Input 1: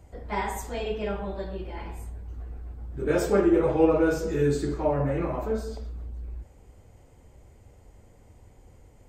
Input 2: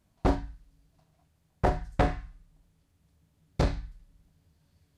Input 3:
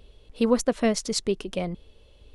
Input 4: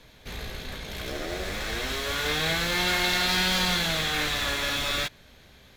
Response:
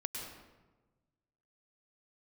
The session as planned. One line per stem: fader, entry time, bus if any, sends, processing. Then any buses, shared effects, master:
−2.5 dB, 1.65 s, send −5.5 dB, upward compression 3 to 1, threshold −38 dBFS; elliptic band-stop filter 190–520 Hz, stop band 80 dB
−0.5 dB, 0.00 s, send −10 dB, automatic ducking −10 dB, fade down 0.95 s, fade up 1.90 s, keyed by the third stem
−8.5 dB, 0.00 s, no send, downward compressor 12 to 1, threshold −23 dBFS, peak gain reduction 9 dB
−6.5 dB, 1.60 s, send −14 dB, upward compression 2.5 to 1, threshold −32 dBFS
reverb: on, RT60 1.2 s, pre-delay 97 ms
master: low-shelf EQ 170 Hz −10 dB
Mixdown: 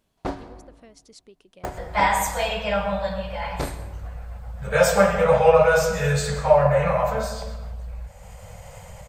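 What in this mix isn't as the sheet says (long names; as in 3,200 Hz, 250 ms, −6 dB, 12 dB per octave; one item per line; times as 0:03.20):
stem 1 −2.5 dB → +9.0 dB
stem 3 −8.5 dB → −19.5 dB
stem 4: muted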